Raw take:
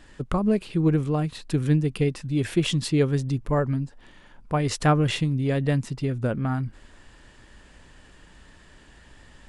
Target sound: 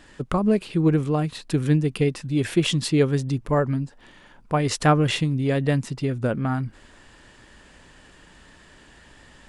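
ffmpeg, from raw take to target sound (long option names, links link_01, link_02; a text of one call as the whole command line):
ffmpeg -i in.wav -af "lowshelf=frequency=92:gain=-8,volume=3dB" out.wav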